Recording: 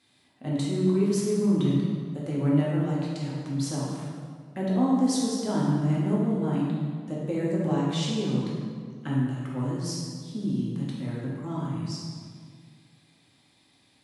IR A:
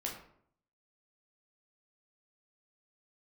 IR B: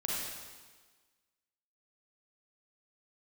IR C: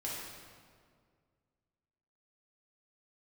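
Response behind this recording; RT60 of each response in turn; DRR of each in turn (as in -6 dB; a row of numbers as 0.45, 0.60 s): C; 0.65, 1.4, 2.0 s; -2.0, -5.0, -6.0 dB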